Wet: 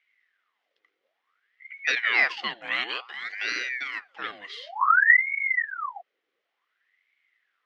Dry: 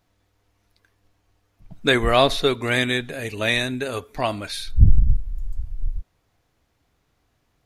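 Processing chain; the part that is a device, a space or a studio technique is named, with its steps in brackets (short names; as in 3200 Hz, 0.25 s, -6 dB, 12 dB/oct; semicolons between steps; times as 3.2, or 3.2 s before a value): 1.95–2.37 gate -21 dBFS, range -8 dB; voice changer toy (ring modulator with a swept carrier 1300 Hz, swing 70%, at 0.56 Hz; speaker cabinet 470–5000 Hz, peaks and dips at 610 Hz -6 dB, 910 Hz -9 dB, 2000 Hz +9 dB, 3100 Hz +5 dB, 4600 Hz -3 dB); gain -6.5 dB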